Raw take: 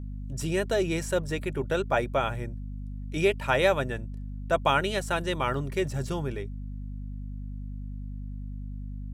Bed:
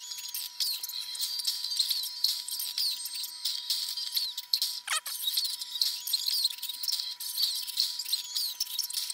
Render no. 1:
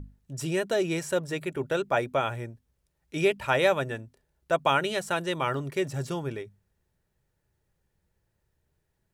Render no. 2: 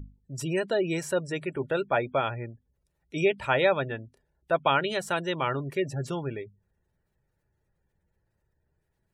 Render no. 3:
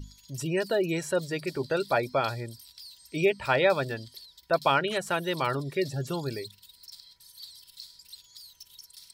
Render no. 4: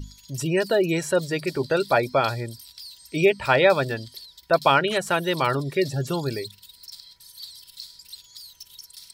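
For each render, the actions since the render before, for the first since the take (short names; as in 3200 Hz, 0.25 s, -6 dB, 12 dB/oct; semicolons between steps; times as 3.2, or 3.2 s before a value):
notches 50/100/150/200/250 Hz
spectral gate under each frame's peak -30 dB strong
add bed -17 dB
gain +5.5 dB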